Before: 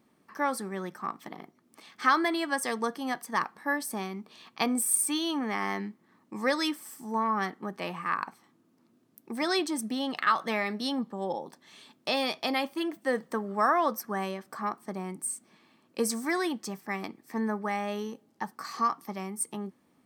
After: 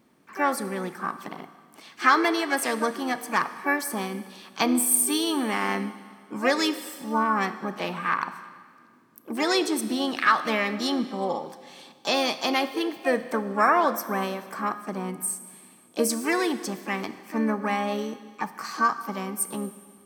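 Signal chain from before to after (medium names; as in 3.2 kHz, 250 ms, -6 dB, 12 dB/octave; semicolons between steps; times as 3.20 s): Schroeder reverb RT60 1.8 s, combs from 25 ms, DRR 12 dB; harmony voices +5 st -9 dB; trim +4 dB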